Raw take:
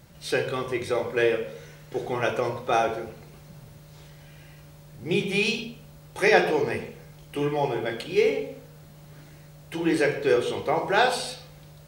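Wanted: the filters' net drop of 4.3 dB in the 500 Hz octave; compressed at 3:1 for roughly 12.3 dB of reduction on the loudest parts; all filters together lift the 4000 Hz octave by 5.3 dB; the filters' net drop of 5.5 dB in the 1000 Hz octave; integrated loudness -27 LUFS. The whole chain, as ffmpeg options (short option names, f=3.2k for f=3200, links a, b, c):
-af "equalizer=f=500:t=o:g=-4,equalizer=f=1k:t=o:g=-6.5,equalizer=f=4k:t=o:g=7,acompressor=threshold=-34dB:ratio=3,volume=9dB"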